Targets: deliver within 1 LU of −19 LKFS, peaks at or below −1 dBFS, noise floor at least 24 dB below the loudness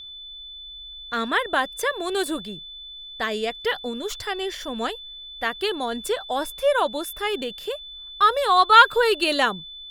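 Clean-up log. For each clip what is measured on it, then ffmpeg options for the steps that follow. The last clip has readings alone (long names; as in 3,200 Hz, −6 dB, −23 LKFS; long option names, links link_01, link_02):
interfering tone 3,500 Hz; level of the tone −37 dBFS; integrated loudness −22.5 LKFS; sample peak −1.0 dBFS; target loudness −19.0 LKFS
→ -af "bandreject=frequency=3500:width=30"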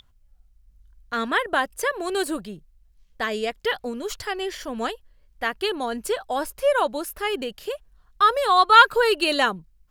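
interfering tone none found; integrated loudness −22.5 LKFS; sample peak −1.5 dBFS; target loudness −19.0 LKFS
→ -af "volume=3.5dB,alimiter=limit=-1dB:level=0:latency=1"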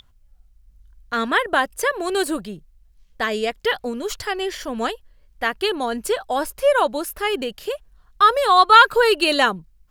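integrated loudness −19.5 LKFS; sample peak −1.0 dBFS; background noise floor −55 dBFS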